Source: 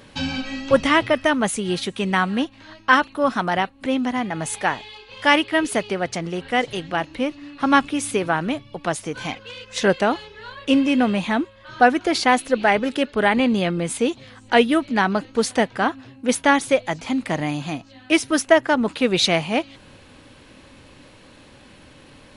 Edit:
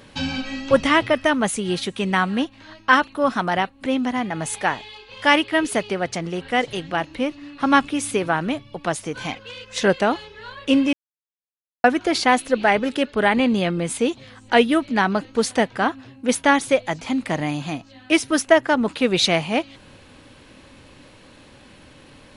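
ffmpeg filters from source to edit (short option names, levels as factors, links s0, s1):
-filter_complex "[0:a]asplit=3[s0][s1][s2];[s0]atrim=end=10.93,asetpts=PTS-STARTPTS,afade=t=out:st=10.926:d=0.004:c=hsin[s3];[s1]atrim=start=10.93:end=11.84,asetpts=PTS-STARTPTS,volume=0[s4];[s2]atrim=start=11.84,asetpts=PTS-STARTPTS,afade=t=in:d=0.004:c=hsin[s5];[s3][s4][s5]concat=n=3:v=0:a=1"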